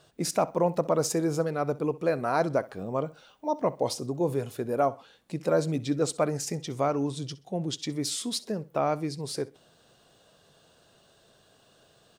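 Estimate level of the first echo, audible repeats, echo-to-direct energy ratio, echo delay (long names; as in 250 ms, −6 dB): −20.0 dB, 2, −19.5 dB, 64 ms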